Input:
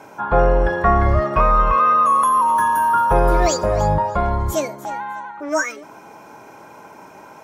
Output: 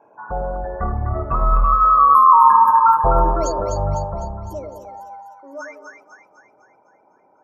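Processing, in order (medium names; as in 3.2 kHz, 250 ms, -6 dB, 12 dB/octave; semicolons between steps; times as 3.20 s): resonances exaggerated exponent 2; Doppler pass-by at 2.35 s, 14 m/s, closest 5.3 m; two-band feedback delay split 840 Hz, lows 100 ms, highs 252 ms, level -5 dB; trim +5 dB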